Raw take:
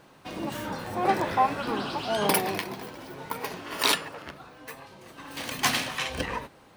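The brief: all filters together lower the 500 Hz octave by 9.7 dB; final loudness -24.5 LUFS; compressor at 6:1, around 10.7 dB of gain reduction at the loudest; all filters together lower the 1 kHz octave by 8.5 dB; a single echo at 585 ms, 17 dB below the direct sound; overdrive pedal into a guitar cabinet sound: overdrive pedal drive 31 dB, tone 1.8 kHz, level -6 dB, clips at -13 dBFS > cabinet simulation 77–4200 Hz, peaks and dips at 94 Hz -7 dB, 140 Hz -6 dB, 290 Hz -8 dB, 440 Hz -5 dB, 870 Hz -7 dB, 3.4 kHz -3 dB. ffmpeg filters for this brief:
-filter_complex "[0:a]equalizer=f=500:t=o:g=-8,equalizer=f=1000:t=o:g=-3.5,acompressor=threshold=0.0251:ratio=6,aecho=1:1:585:0.141,asplit=2[s0][s1];[s1]highpass=f=720:p=1,volume=35.5,asoftclip=type=tanh:threshold=0.224[s2];[s0][s2]amix=inputs=2:normalize=0,lowpass=f=1800:p=1,volume=0.501,highpass=77,equalizer=f=94:t=q:w=4:g=-7,equalizer=f=140:t=q:w=4:g=-6,equalizer=f=290:t=q:w=4:g=-8,equalizer=f=440:t=q:w=4:g=-5,equalizer=f=870:t=q:w=4:g=-7,equalizer=f=3400:t=q:w=4:g=-3,lowpass=f=4200:w=0.5412,lowpass=f=4200:w=1.3066,volume=1.26"

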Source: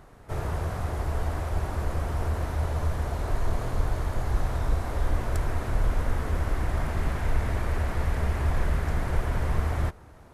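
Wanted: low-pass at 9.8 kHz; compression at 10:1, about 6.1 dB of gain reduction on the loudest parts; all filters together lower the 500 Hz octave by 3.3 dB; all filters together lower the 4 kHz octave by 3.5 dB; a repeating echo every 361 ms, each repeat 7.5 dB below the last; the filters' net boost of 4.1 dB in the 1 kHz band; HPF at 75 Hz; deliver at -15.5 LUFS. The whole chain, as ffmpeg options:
-af "highpass=75,lowpass=9800,equalizer=f=500:t=o:g=-7,equalizer=f=1000:t=o:g=7.5,equalizer=f=4000:t=o:g=-5,acompressor=threshold=0.0282:ratio=10,aecho=1:1:361|722|1083|1444|1805:0.422|0.177|0.0744|0.0312|0.0131,volume=10"

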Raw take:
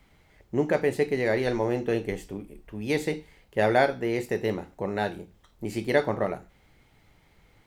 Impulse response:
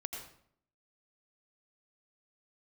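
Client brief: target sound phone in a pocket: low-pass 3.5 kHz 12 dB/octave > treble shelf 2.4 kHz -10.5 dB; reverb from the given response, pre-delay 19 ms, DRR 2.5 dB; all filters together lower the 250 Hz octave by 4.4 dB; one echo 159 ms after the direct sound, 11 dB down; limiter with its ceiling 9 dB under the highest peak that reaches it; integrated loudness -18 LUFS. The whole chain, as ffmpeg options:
-filter_complex "[0:a]equalizer=f=250:t=o:g=-6,alimiter=limit=0.126:level=0:latency=1,aecho=1:1:159:0.282,asplit=2[s0][s1];[1:a]atrim=start_sample=2205,adelay=19[s2];[s1][s2]afir=irnorm=-1:irlink=0,volume=0.794[s3];[s0][s3]amix=inputs=2:normalize=0,lowpass=3500,highshelf=f=2400:g=-10.5,volume=3.98"

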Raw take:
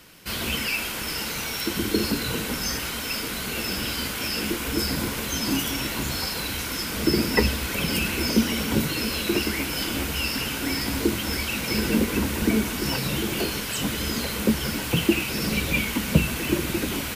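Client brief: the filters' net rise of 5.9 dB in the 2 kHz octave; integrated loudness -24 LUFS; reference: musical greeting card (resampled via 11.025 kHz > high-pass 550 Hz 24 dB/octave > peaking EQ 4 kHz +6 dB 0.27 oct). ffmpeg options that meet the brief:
-af "equalizer=f=2000:t=o:g=7.5,aresample=11025,aresample=44100,highpass=f=550:w=0.5412,highpass=f=550:w=1.3066,equalizer=f=4000:t=o:w=0.27:g=6,volume=1.06"

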